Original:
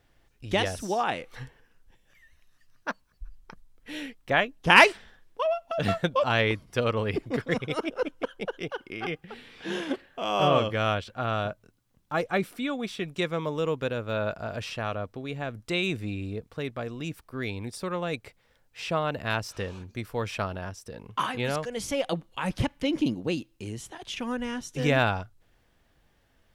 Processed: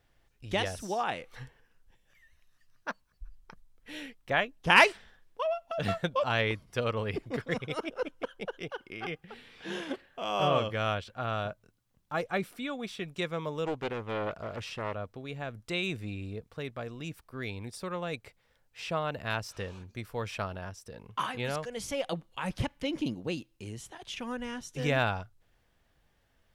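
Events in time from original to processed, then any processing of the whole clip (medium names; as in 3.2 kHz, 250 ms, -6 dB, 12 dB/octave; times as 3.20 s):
13.65–14.94 s: loudspeaker Doppler distortion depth 0.53 ms
whole clip: peaking EQ 290 Hz -3 dB 0.87 oct; trim -4 dB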